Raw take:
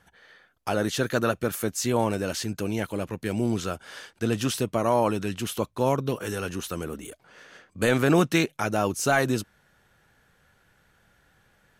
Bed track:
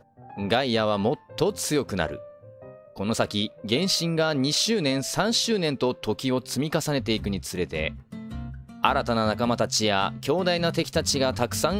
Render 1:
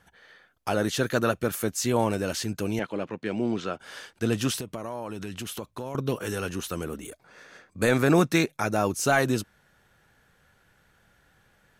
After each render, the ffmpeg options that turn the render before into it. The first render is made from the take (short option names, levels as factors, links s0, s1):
-filter_complex "[0:a]asettb=1/sr,asplit=3[s0][s1][s2];[s0]atrim=end=2.794[s3];[s1]atrim=start=2.79:end=3.8,asetpts=PTS-STARTPTS,afade=t=in:d=0.004:c=qsin,afade=t=out:st=1.006:d=0.004:c=qsin,highpass=180,lowpass=3800[s4];[s2]atrim=start=3.796[s5];[s3][s4]acrossfade=d=0.004:c1=hsin:c2=qsin[s6];[s6][s5]acrossfade=d=0.004:c1=qsin:c2=hsin,asettb=1/sr,asplit=3[s7][s8][s9];[s7]atrim=end=4.604[s10];[s8]atrim=start=4.6:end=5.95,asetpts=PTS-STARTPTS,afade=t=in:d=0.004:c=qsin,afade=t=out:st=1.346:d=0.004:c=qsin,acompressor=threshold=0.0282:ratio=5:attack=3.2:release=140:knee=1:detection=peak[s11];[s9]atrim=start=5.946[s12];[s10][s11]acrossfade=d=0.004:c1=hsin:c2=qsin[s13];[s13][s12]acrossfade=d=0.004:c1=qsin:c2=hsin,asettb=1/sr,asplit=3[s14][s15][s16];[s14]atrim=end=7.074[s17];[s15]atrim=start=7.07:end=8.95,asetpts=PTS-STARTPTS,afade=t=in:d=0.004:c=qsin,afade=t=out:st=1.876:d=0.004:c=qsin,bandreject=f=3000:w=6.4[s18];[s16]atrim=start=8.946[s19];[s17][s18]acrossfade=d=0.004:c1=hsin:c2=qsin[s20];[s20][s19]acrossfade=d=0.004:c1=qsin:c2=hsin"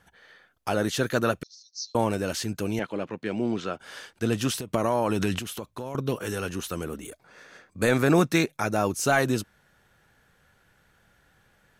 -filter_complex "[0:a]asettb=1/sr,asplit=3[s0][s1][s2];[s0]atrim=end=1.434[s3];[s1]atrim=start=1.43:end=1.95,asetpts=PTS-STARTPTS,afade=t=in:d=0.004:c=qsin,afade=t=out:st=0.516:d=0.004:c=qsin,asuperpass=centerf=5000:order=8:qfactor=2.6[s4];[s2]atrim=start=1.946[s5];[s3][s4]acrossfade=d=0.004:c1=hsin:c2=qsin[s6];[s6][s5]acrossfade=d=0.004:c1=qsin:c2=hsin,asplit=3[s7][s8][s9];[s7]atrim=end=4.742[s10];[s8]atrim=start=4.738:end=5.392,asetpts=PTS-STARTPTS,volume=3.35[s11];[s9]atrim=start=5.388[s12];[s10][s11]acrossfade=d=0.004:c1=hsin:c2=hsin[s13];[s13][s12]acrossfade=d=0.004:c1=hsin:c2=hsin"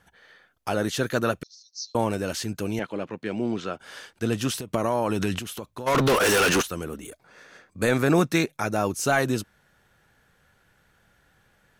-filter_complex "[0:a]asplit=3[s0][s1][s2];[s0]afade=t=out:st=5.86:d=0.02[s3];[s1]asplit=2[s4][s5];[s5]highpass=f=720:p=1,volume=50.1,asoftclip=type=tanh:threshold=0.237[s6];[s4][s6]amix=inputs=2:normalize=0,lowpass=f=6200:p=1,volume=0.501,afade=t=in:st=5.86:d=0.02,afade=t=out:st=6.61:d=0.02[s7];[s2]afade=t=in:st=6.61:d=0.02[s8];[s3][s7][s8]amix=inputs=3:normalize=0"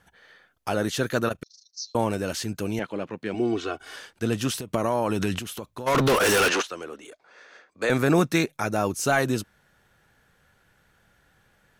-filter_complex "[0:a]asettb=1/sr,asplit=3[s0][s1][s2];[s0]atrim=end=1.284[s3];[s1]atrim=start=1.28:end=1.79,asetpts=PTS-STARTPTS,afade=t=in:d=0.004:c=qsin,afade=t=out:st=0.506:d=0.004:c=qsin,tremolo=f=26:d=0.788[s4];[s2]atrim=start=1.786[s5];[s3][s4]acrossfade=d=0.004:c1=hsin:c2=qsin[s6];[s6][s5]acrossfade=d=0.004:c1=qsin:c2=hsin,asettb=1/sr,asplit=3[s7][s8][s9];[s7]atrim=end=3.344[s10];[s8]atrim=start=3.34:end=3.96,asetpts=PTS-STARTPTS,afade=t=in:d=0.004:c=qsin,afade=t=out:st=0.616:d=0.004:c=qsin,aecho=1:1:2.7:0.92,atrim=end_sample=27342[s11];[s9]atrim=start=3.956[s12];[s10][s11]acrossfade=d=0.004:c1=hsin:c2=qsin[s13];[s13][s12]acrossfade=d=0.004:c1=qsin:c2=hsin,asettb=1/sr,asplit=3[s14][s15][s16];[s14]atrim=end=6.484[s17];[s15]atrim=start=6.48:end=7.9,asetpts=PTS-STARTPTS,afade=t=in:d=0.004:c=qsin,afade=t=out:st=1.416:d=0.004:c=qsin,acrossover=split=320 7100:gain=0.1 1 0.1[s18][s19][s20];[s18][s19][s20]amix=inputs=3:normalize=0[s21];[s16]atrim=start=7.896[s22];[s17][s21]acrossfade=d=0.004:c1=hsin:c2=qsin[s23];[s23][s22]acrossfade=d=0.004:c1=qsin:c2=hsin"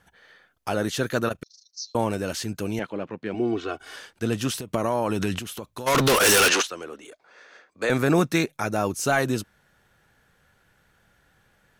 -filter_complex "[0:a]asettb=1/sr,asplit=3[s0][s1][s2];[s0]atrim=end=2.904[s3];[s1]atrim=start=2.9:end=3.69,asetpts=PTS-STARTPTS,afade=t=in:d=0.004:c=qsin,afade=t=out:st=0.786:d=0.004:c=qsin,lowpass=f=3100:p=1[s4];[s2]atrim=start=3.686[s5];[s3][s4]acrossfade=d=0.004:c1=hsin:c2=qsin[s6];[s6][s5]acrossfade=d=0.004:c1=qsin:c2=hsin,asettb=1/sr,asplit=3[s7][s8][s9];[s7]atrim=end=5.764[s10];[s8]atrim=start=5.76:end=6.7,asetpts=PTS-STARTPTS,afade=t=in:d=0.004:c=qsin,afade=t=out:st=0.936:d=0.004:c=qsin,highshelf=f=2700:g=8.5[s11];[s9]atrim=start=6.696[s12];[s10][s11]acrossfade=d=0.004:c1=hsin:c2=qsin[s13];[s13][s12]acrossfade=d=0.004:c1=qsin:c2=hsin"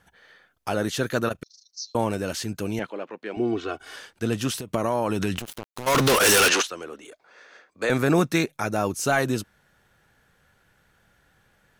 -filter_complex "[0:a]asettb=1/sr,asplit=3[s0][s1][s2];[s0]atrim=end=2.904[s3];[s1]atrim=start=2.9:end=3.37,asetpts=PTS-STARTPTS,afade=t=in:d=0.004:c=qsin,afade=t=out:st=0.466:d=0.004:c=qsin,highpass=360[s4];[s2]atrim=start=3.366[s5];[s3][s4]acrossfade=d=0.004:c1=hsin:c2=qsin[s6];[s6][s5]acrossfade=d=0.004:c1=qsin:c2=hsin,asettb=1/sr,asplit=3[s7][s8][s9];[s7]atrim=end=5.374[s10];[s8]atrim=start=5.37:end=6.16,asetpts=PTS-STARTPTS,afade=t=in:d=0.004:c=qsin,afade=t=out:st=0.786:d=0.004:c=qsin,acrusher=bits=4:mix=0:aa=0.5[s11];[s9]atrim=start=6.156[s12];[s10][s11]acrossfade=d=0.004:c1=hsin:c2=qsin[s13];[s13][s12]acrossfade=d=0.004:c1=qsin:c2=hsin"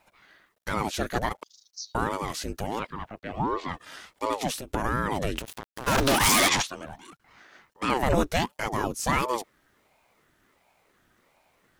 -af "acrusher=bits=11:mix=0:aa=0.000001,aeval=exprs='val(0)*sin(2*PI*450*n/s+450*0.7/1.4*sin(2*PI*1.4*n/s))':c=same"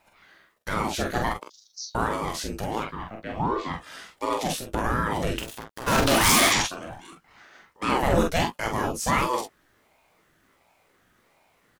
-filter_complex "[0:a]asplit=2[s0][s1];[s1]adelay=18,volume=0.299[s2];[s0][s2]amix=inputs=2:normalize=0,aecho=1:1:33|45:0.299|0.596"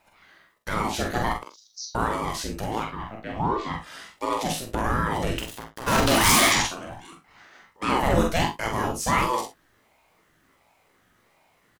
-af "aecho=1:1:44|63:0.266|0.188"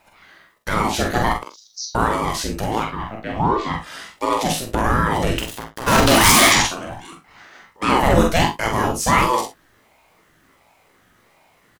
-af "volume=2.11,alimiter=limit=0.794:level=0:latency=1"